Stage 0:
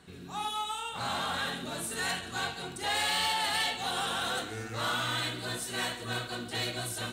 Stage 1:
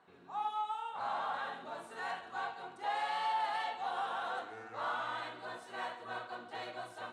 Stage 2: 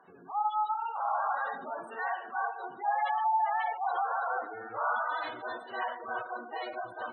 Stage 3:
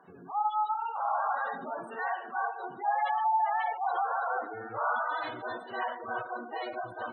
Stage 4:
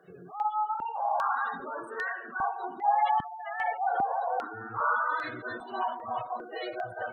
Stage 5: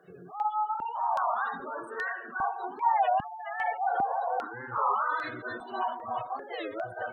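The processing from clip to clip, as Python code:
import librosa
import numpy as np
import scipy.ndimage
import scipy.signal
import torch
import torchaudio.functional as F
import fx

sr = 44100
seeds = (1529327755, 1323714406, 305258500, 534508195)

y1 = fx.bandpass_q(x, sr, hz=880.0, q=1.7)
y2 = fx.low_shelf(y1, sr, hz=67.0, db=-7.0)
y2 = fx.spec_gate(y2, sr, threshold_db=-15, keep='strong')
y2 = y2 * 10.0 ** (7.0 / 20.0)
y3 = fx.low_shelf(y2, sr, hz=230.0, db=11.0)
y4 = fx.phaser_held(y3, sr, hz=2.5, low_hz=250.0, high_hz=3100.0)
y4 = y4 * 10.0 ** (4.5 / 20.0)
y5 = fx.record_warp(y4, sr, rpm=33.33, depth_cents=250.0)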